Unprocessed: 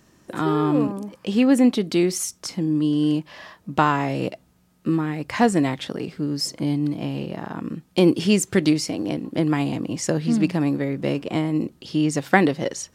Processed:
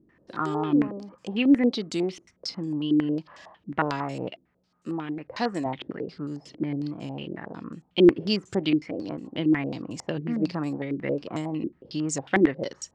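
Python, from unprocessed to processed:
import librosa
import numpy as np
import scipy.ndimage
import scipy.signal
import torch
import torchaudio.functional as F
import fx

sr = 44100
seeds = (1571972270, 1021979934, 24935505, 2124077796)

y = fx.vibrato(x, sr, rate_hz=3.5, depth_cents=35.0)
y = fx.low_shelf(y, sr, hz=170.0, db=-9.0, at=(4.3, 5.66))
y = fx.filter_held_lowpass(y, sr, hz=11.0, low_hz=340.0, high_hz=7300.0)
y = y * 10.0 ** (-8.5 / 20.0)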